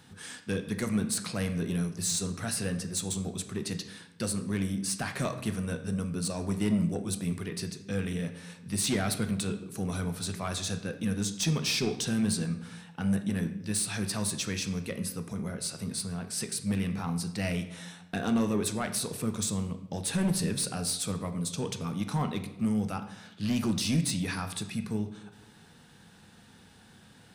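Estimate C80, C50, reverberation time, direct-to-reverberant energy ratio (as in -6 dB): 13.0 dB, 11.0 dB, 0.95 s, 7.5 dB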